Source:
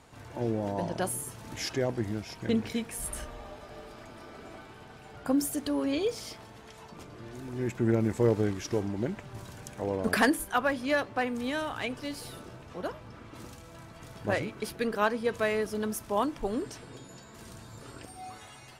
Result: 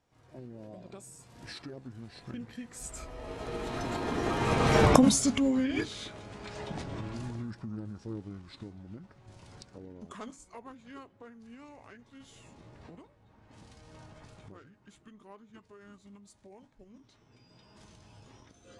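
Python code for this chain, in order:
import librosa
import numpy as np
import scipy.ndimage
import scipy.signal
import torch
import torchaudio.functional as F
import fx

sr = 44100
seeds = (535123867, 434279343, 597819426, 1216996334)

y = fx.recorder_agc(x, sr, target_db=-18.0, rise_db_per_s=21.0, max_gain_db=30)
y = fx.doppler_pass(y, sr, speed_mps=21, closest_m=5.4, pass_at_s=4.93)
y = fx.formant_shift(y, sr, semitones=-5)
y = F.gain(torch.from_numpy(y), 6.5).numpy()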